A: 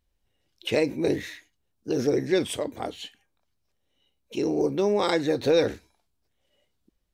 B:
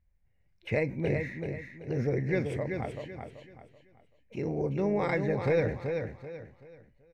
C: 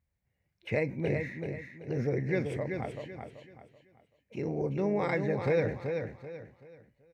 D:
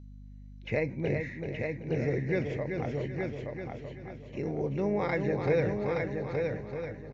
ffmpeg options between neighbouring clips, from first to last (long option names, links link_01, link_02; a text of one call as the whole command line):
ffmpeg -i in.wav -filter_complex "[0:a]firequalizer=gain_entry='entry(160,0);entry(290,-15);entry(560,-9);entry(1300,-13);entry(2100,-3);entry(3200,-26);entry(4600,-22);entry(11000,-28)':delay=0.05:min_phase=1,asplit=2[link_01][link_02];[link_02]aecho=0:1:383|766|1149|1532:0.501|0.16|0.0513|0.0164[link_03];[link_01][link_03]amix=inputs=2:normalize=0,volume=4.5dB" out.wav
ffmpeg -i in.wav -af "highpass=86,volume=-1dB" out.wav
ffmpeg -i in.wav -af "aeval=exprs='val(0)+0.00501*(sin(2*PI*50*n/s)+sin(2*PI*2*50*n/s)/2+sin(2*PI*3*50*n/s)/3+sin(2*PI*4*50*n/s)/4+sin(2*PI*5*50*n/s)/5)':channel_layout=same,aecho=1:1:872|1744|2616:0.596|0.149|0.0372" -ar 16000 -c:a mp2 -b:a 128k out.mp2